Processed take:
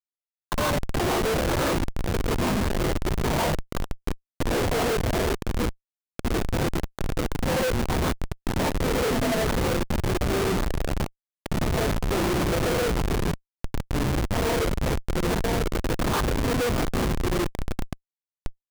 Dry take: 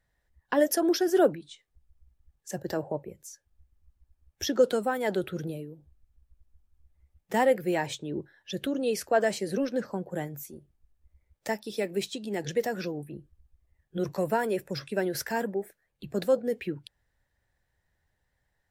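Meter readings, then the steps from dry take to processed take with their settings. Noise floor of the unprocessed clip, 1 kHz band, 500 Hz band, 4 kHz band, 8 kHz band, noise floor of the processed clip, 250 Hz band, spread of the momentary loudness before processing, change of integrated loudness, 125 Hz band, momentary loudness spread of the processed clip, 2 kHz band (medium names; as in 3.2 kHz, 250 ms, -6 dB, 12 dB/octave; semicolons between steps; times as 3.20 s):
-78 dBFS, +5.5 dB, +1.5 dB, +8.0 dB, +6.0 dB, under -85 dBFS, +5.0 dB, 16 LU, +3.0 dB, +14.5 dB, 10 LU, +6.5 dB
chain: single-diode clipper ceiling -19.5 dBFS; recorder AGC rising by 56 dB/s; frequency weighting D; FFT band-reject 1.1–3.4 kHz; compression 3:1, threshold -32 dBFS, peak gain reduction 17 dB; sample-rate reducer 2.6 kHz, jitter 0%; on a send: flutter echo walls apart 9.8 m, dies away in 0.4 s; on the sum: LFO high-pass saw down 2.9 Hz 330–3000 Hz; ever faster or slower copies 303 ms, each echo -5 st, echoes 3; gated-style reverb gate 190 ms rising, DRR -7.5 dB; Schmitt trigger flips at -19.5 dBFS; trim +1 dB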